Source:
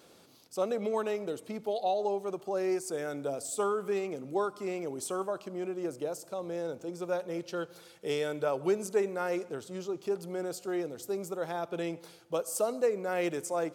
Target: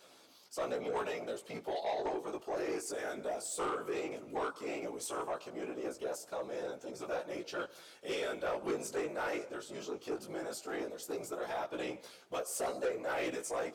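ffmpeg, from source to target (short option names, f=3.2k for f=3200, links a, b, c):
-filter_complex "[0:a]afftfilt=real='hypot(re,im)*cos(2*PI*random(0))':imag='hypot(re,im)*sin(2*PI*random(1))':win_size=512:overlap=0.75,flanger=delay=15.5:depth=4.2:speed=0.16,asplit=2[a][b];[b]highpass=f=720:p=1,volume=22dB,asoftclip=type=tanh:threshold=-20dB[c];[a][c]amix=inputs=2:normalize=0,lowpass=f=7.5k:p=1,volume=-6dB,volume=-5.5dB"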